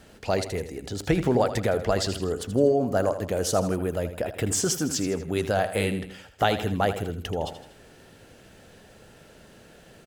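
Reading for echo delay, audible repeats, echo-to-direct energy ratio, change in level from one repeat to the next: 80 ms, 3, -10.5 dB, -6.0 dB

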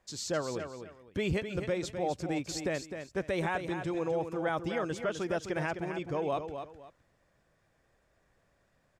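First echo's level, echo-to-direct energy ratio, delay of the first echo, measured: -8.0 dB, -7.5 dB, 257 ms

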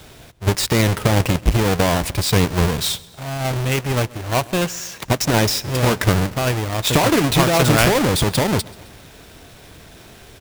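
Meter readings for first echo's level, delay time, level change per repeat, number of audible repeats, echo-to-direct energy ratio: -22.5 dB, 132 ms, -5.0 dB, 3, -21.0 dB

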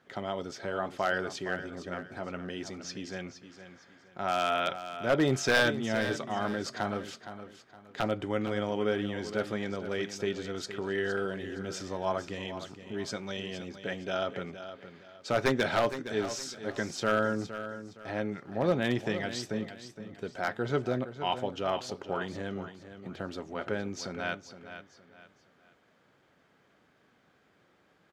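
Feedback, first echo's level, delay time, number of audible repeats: 32%, -11.5 dB, 465 ms, 3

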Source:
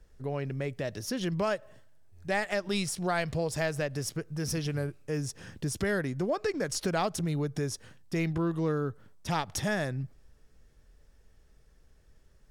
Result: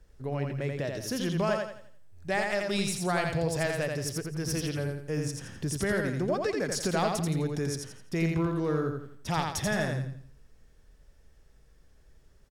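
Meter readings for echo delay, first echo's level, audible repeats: 85 ms, -4.0 dB, 4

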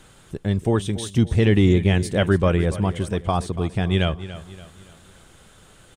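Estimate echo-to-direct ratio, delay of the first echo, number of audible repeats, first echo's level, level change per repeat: -13.5 dB, 285 ms, 3, -14.5 dB, -7.5 dB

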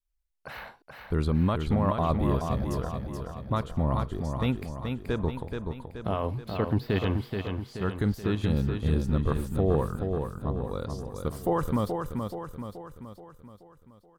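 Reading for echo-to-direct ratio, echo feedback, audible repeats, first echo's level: -4.0 dB, 52%, 6, -5.5 dB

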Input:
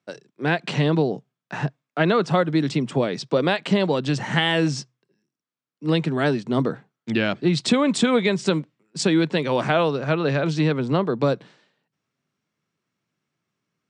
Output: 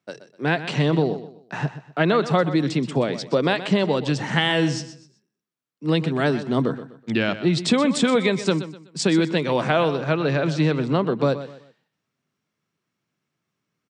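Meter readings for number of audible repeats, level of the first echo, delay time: 3, -13.0 dB, 125 ms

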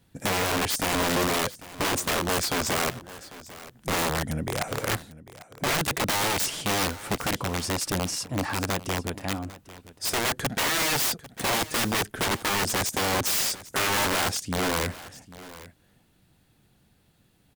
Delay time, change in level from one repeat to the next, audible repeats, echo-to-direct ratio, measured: 797 ms, no regular repeats, 1, -17.5 dB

